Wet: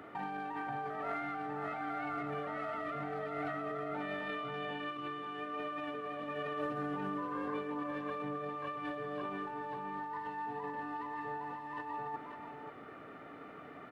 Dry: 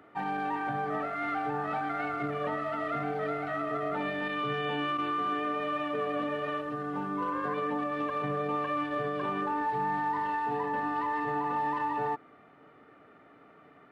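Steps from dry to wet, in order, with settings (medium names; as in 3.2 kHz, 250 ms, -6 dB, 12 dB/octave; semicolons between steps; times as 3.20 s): compressor with a negative ratio -39 dBFS, ratio -1; 7.33–7.83 s: doubling 20 ms -2.5 dB; on a send: delay 534 ms -7.5 dB; on the sum: trim -1.5 dB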